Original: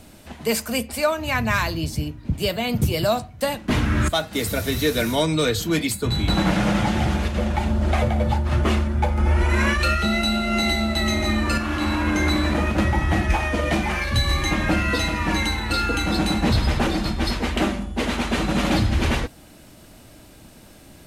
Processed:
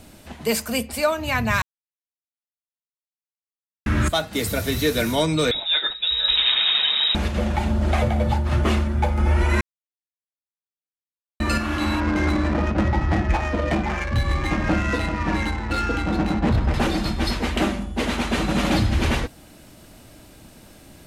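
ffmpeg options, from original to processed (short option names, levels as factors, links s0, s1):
-filter_complex "[0:a]asettb=1/sr,asplit=3[s0][s1][s2];[s0]atrim=end=5.514[s3];[s1]atrim=start=5.51:end=7.15,asetpts=PTS-STARTPTS,afade=t=in:d=0.004:c=qsin,afade=t=out:st=1.636:d=0.004:c=qsin,lowpass=f=3300:t=q:w=0.5098,lowpass=f=3300:t=q:w=0.6013,lowpass=f=3300:t=q:w=0.9,lowpass=f=3300:t=q:w=2.563,afreqshift=-3900[s4];[s2]atrim=start=7.146[s5];[s3][s4]acrossfade=d=0.004:c1=hsin:c2=qsin[s6];[s6][s5]acrossfade=d=0.004:c1=qsin:c2=hsin,asettb=1/sr,asplit=3[s7][s8][s9];[s7]atrim=end=12.004[s10];[s8]atrim=start=12:end=16.74,asetpts=PTS-STARTPTS,afade=t=in:d=0.004:c=qsin,afade=t=out:st=4.736:d=0.004:c=qsin,adynamicsmooth=sensitivity=1.5:basefreq=820[s11];[s9]atrim=start=16.736[s12];[s10][s11]acrossfade=d=0.004:c1=hsin:c2=qsin[s13];[s13][s12]acrossfade=d=0.004:c1=qsin:c2=hsin,asplit=5[s14][s15][s16][s17][s18];[s14]atrim=end=1.62,asetpts=PTS-STARTPTS,afade=t=out:st=1.616:d=0.004:c=hsin[s19];[s15]atrim=start=1.62:end=3.86,asetpts=PTS-STARTPTS,volume=0[s20];[s16]atrim=start=3.86:end=9.61,asetpts=PTS-STARTPTS,afade=t=in:d=0.004:c=hsin,afade=t=out:st=5.746:d=0.004:c=hsin[s21];[s17]atrim=start=9.61:end=11.4,asetpts=PTS-STARTPTS,volume=0[s22];[s18]atrim=start=11.4,asetpts=PTS-STARTPTS,afade=t=in:d=0.004:c=hsin[s23];[s19][s20][s21][s22][s23]concat=n=5:v=0:a=1"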